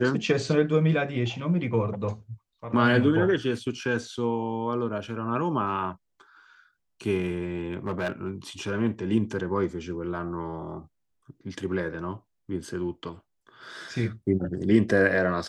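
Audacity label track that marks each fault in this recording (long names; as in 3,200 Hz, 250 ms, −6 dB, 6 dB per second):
7.540000	8.300000	clipping −23.5 dBFS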